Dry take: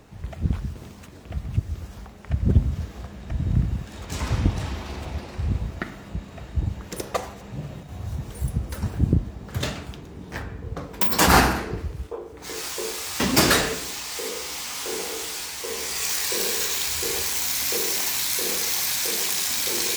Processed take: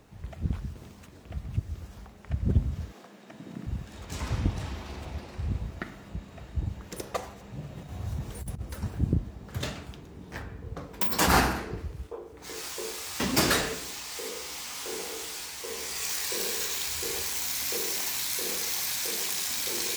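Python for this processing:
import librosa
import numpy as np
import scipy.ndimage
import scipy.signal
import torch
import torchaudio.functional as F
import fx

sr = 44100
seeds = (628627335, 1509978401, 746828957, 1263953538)

y = fx.highpass(x, sr, hz=220.0, slope=24, at=(2.93, 3.67))
y = fx.over_compress(y, sr, threshold_db=-28.0, ratio=-0.5, at=(7.76, 8.61), fade=0.02)
y = fx.quant_dither(y, sr, seeds[0], bits=12, dither='triangular')
y = y * 10.0 ** (-6.0 / 20.0)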